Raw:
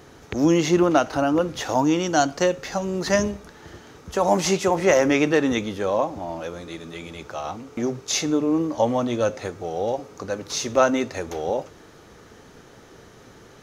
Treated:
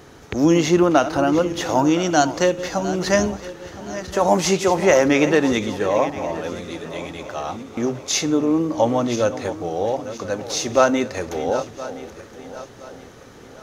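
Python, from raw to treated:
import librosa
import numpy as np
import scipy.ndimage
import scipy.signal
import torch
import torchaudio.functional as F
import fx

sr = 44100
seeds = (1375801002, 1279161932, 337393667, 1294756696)

y = fx.reverse_delay_fb(x, sr, ms=509, feedback_pct=60, wet_db=-13.0)
y = F.gain(torch.from_numpy(y), 2.5).numpy()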